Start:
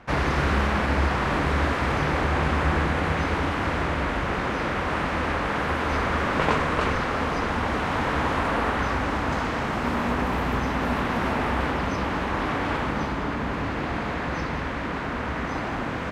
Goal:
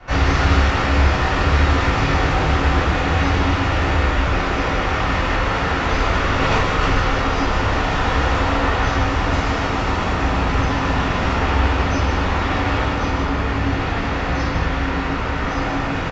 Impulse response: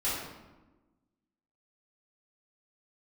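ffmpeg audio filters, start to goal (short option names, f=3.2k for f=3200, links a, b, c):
-filter_complex "[0:a]acrossover=split=120|3000[a][b][c];[b]acompressor=threshold=-39dB:ratio=1.5[d];[a][d][c]amix=inputs=3:normalize=0,aecho=1:1:151:0.422[e];[1:a]atrim=start_sample=2205,atrim=end_sample=3087[f];[e][f]afir=irnorm=-1:irlink=0,aresample=16000,aresample=44100,volume=4dB"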